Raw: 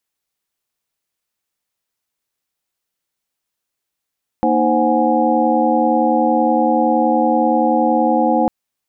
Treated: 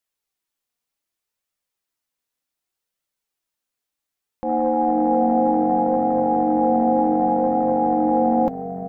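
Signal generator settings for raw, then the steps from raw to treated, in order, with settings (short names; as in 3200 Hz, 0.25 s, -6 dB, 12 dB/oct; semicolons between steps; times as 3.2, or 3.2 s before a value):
chord A#3/D#4/C5/F#5/G#5 sine, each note -18.5 dBFS 4.05 s
transient shaper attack -7 dB, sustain +6 dB; flange 0.66 Hz, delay 1.4 ms, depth 2.9 ms, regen +58%; frequency-shifting echo 0.448 s, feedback 37%, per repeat -48 Hz, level -12 dB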